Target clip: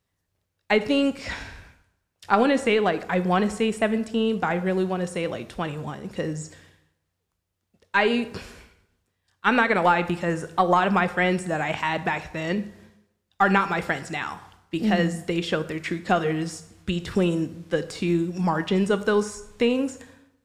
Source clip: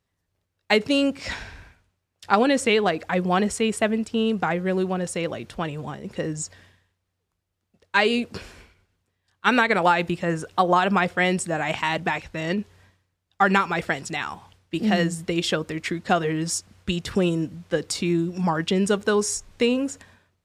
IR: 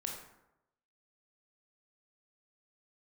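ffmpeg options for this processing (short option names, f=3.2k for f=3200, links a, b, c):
-filter_complex "[0:a]aeval=exprs='0.708*(cos(1*acos(clip(val(0)/0.708,-1,1)))-cos(1*PI/2))+0.02*(cos(4*acos(clip(val(0)/0.708,-1,1)))-cos(4*PI/2))':c=same,acrossover=split=3000[a][b];[b]acompressor=threshold=-40dB:ratio=4:attack=1:release=60[c];[a][c]amix=inputs=2:normalize=0,asplit=2[d][e];[1:a]atrim=start_sample=2205,highshelf=f=5.2k:g=10.5[f];[e][f]afir=irnorm=-1:irlink=0,volume=-8.5dB[g];[d][g]amix=inputs=2:normalize=0,volume=-2.5dB"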